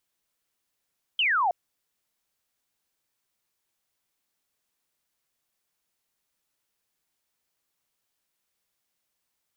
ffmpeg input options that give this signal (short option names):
-f lavfi -i "aevalsrc='0.0944*clip(t/0.002,0,1)*clip((0.32-t)/0.002,0,1)*sin(2*PI*3200*0.32/log(670/3200)*(exp(log(670/3200)*t/0.32)-1))':d=0.32:s=44100"